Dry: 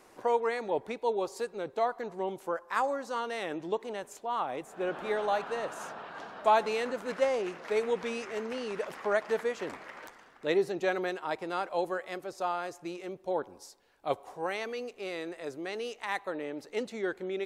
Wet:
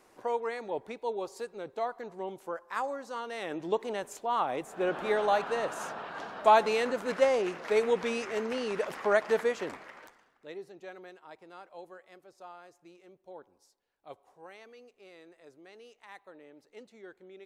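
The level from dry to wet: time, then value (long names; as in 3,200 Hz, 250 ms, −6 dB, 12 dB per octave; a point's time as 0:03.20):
0:03.25 −4 dB
0:03.78 +3 dB
0:09.49 +3 dB
0:10.04 −5 dB
0:10.52 −16 dB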